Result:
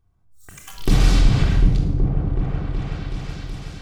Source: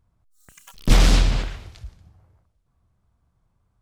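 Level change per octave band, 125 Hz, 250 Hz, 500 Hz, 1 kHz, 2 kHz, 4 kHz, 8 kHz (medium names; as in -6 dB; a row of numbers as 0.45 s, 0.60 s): +6.5 dB, +5.5 dB, +2.0 dB, -0.5 dB, -1.0 dB, -2.5 dB, -3.5 dB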